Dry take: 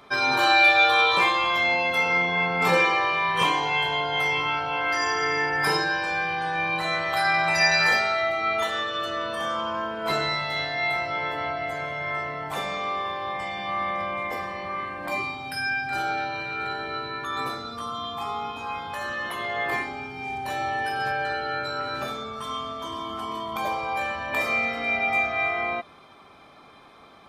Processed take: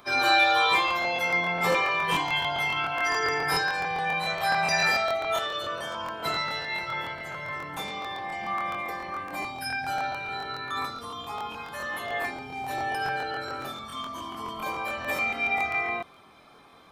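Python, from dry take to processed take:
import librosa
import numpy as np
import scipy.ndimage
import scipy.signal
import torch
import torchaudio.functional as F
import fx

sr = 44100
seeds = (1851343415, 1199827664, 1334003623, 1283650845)

y = fx.high_shelf(x, sr, hz=8800.0, db=9.5)
y = fx.stretch_vocoder_free(y, sr, factor=0.62)
y = fx.buffer_crackle(y, sr, first_s=0.86, period_s=0.14, block=1024, kind='repeat')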